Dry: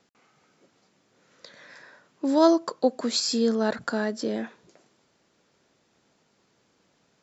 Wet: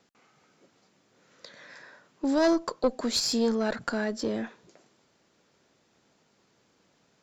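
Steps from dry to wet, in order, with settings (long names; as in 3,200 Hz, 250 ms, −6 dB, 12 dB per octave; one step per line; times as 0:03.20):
one-sided soft clipper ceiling −18.5 dBFS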